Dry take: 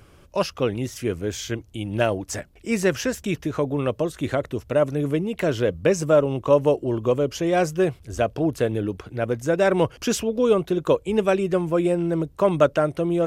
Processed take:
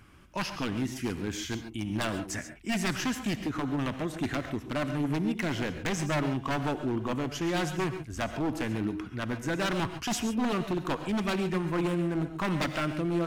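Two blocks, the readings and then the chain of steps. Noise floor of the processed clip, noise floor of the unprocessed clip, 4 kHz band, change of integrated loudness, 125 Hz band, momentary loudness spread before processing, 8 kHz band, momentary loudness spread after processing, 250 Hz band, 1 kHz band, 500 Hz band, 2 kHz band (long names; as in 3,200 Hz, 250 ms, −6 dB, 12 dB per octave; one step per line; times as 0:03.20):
−45 dBFS, −52 dBFS, −2.0 dB, −8.0 dB, −5.5 dB, 8 LU, −5.0 dB, 5 LU, −5.0 dB, −5.5 dB, −14.0 dB, −3.0 dB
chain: octave-band graphic EQ 250/500/1,000/2,000 Hz +8/−10/+4/+6 dB
wave folding −17 dBFS
reverb whose tail is shaped and stops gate 160 ms rising, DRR 9 dB
level −6.5 dB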